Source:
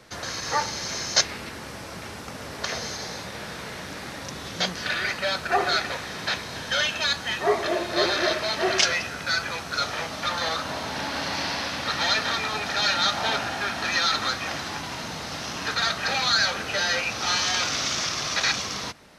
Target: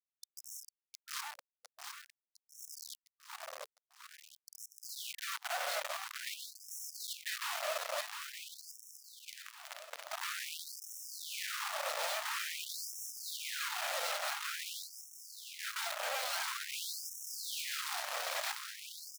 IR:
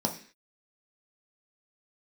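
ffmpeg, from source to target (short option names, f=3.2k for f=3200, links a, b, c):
-filter_complex "[0:a]highpass=290,afwtdn=0.0398,lowpass=7.4k,equalizer=f=590:t=o:w=0.68:g=13.5,acrossover=split=1000|2500|5600[a][b][c][d];[a]acompressor=threshold=-33dB:ratio=4[e];[b]acompressor=threshold=-39dB:ratio=4[f];[c]acompressor=threshold=-42dB:ratio=4[g];[d]acompressor=threshold=-50dB:ratio=4[h];[e][f][g][h]amix=inputs=4:normalize=0,alimiter=level_in=2dB:limit=-24dB:level=0:latency=1:release=167,volume=-2dB,asettb=1/sr,asplit=3[i][j][k];[i]atrim=end=8.004[l];[j]atrim=start=8:end=10.07,asetpts=PTS-STARTPTS,afade=t=in:d=0.004:c=qsin,afade=t=out:st=2.066:d=0.004:c=qsin,acompressor=threshold=-40dB:ratio=16[m];[k]atrim=start=10.066[n];[l][m]acrossfade=d=0.004:c1=hsin:c2=qsin[o];[o][n]acrossfade=d=0.004:c1=qsin:c2=hsin,acrusher=bits=3:dc=4:mix=0:aa=0.000001,aecho=1:1:707|1414|2121|2828|3535|4242|4949:0.501|0.276|0.152|0.0834|0.0459|0.0252|0.0139,afftfilt=real='re*gte(b*sr/1024,460*pow(5400/460,0.5+0.5*sin(2*PI*0.48*pts/sr)))':imag='im*gte(b*sr/1024,460*pow(5400/460,0.5+0.5*sin(2*PI*0.48*pts/sr)))':win_size=1024:overlap=0.75,volume=1dB"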